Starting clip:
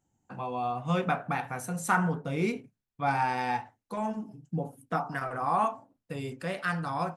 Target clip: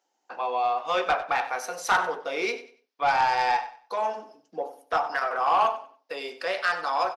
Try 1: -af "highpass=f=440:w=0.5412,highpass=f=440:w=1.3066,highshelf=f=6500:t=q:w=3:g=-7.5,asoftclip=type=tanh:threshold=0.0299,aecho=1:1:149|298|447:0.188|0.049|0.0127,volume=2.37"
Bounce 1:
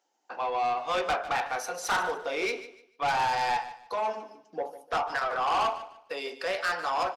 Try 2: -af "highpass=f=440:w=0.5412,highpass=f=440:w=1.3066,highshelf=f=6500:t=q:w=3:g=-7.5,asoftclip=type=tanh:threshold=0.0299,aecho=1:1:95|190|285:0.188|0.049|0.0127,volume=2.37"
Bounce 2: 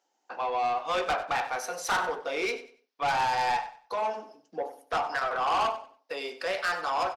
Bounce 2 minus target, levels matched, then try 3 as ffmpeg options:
saturation: distortion +7 dB
-af "highpass=f=440:w=0.5412,highpass=f=440:w=1.3066,highshelf=f=6500:t=q:w=3:g=-7.5,asoftclip=type=tanh:threshold=0.075,aecho=1:1:95|190|285:0.188|0.049|0.0127,volume=2.37"

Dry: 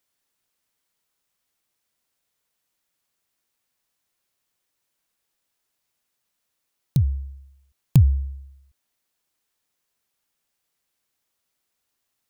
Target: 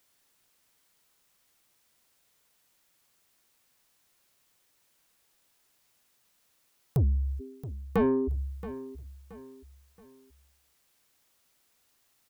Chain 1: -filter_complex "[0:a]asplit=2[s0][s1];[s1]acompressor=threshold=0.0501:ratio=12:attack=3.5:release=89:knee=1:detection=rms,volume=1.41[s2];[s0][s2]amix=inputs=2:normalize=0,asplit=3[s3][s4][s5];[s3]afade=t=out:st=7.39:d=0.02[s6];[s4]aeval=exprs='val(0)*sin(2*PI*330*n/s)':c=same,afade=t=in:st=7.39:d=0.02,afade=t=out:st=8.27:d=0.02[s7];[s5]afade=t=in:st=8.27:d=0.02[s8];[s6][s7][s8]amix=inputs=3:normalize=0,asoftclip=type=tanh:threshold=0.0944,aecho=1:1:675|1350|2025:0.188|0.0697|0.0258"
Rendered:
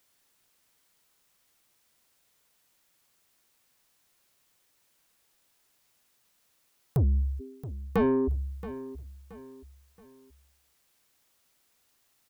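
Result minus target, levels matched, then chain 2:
compression: peak gain reduction -8.5 dB
-filter_complex "[0:a]asplit=2[s0][s1];[s1]acompressor=threshold=0.0168:ratio=12:attack=3.5:release=89:knee=1:detection=rms,volume=1.41[s2];[s0][s2]amix=inputs=2:normalize=0,asplit=3[s3][s4][s5];[s3]afade=t=out:st=7.39:d=0.02[s6];[s4]aeval=exprs='val(0)*sin(2*PI*330*n/s)':c=same,afade=t=in:st=7.39:d=0.02,afade=t=out:st=8.27:d=0.02[s7];[s5]afade=t=in:st=8.27:d=0.02[s8];[s6][s7][s8]amix=inputs=3:normalize=0,asoftclip=type=tanh:threshold=0.0944,aecho=1:1:675|1350|2025:0.188|0.0697|0.0258"

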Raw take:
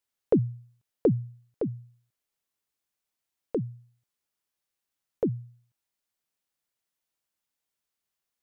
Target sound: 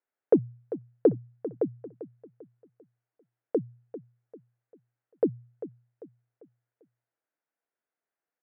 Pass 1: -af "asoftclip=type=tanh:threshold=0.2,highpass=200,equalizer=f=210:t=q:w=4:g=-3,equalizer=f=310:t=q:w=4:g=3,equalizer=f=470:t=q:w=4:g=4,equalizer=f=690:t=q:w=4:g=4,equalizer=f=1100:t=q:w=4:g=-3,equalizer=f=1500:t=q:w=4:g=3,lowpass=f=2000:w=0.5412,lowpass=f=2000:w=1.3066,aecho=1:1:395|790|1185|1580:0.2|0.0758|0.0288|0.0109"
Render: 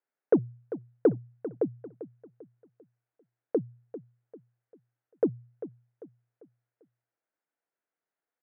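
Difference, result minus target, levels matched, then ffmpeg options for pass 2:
saturation: distortion +13 dB
-af "asoftclip=type=tanh:threshold=0.473,highpass=200,equalizer=f=210:t=q:w=4:g=-3,equalizer=f=310:t=q:w=4:g=3,equalizer=f=470:t=q:w=4:g=4,equalizer=f=690:t=q:w=4:g=4,equalizer=f=1100:t=q:w=4:g=-3,equalizer=f=1500:t=q:w=4:g=3,lowpass=f=2000:w=0.5412,lowpass=f=2000:w=1.3066,aecho=1:1:395|790|1185|1580:0.2|0.0758|0.0288|0.0109"

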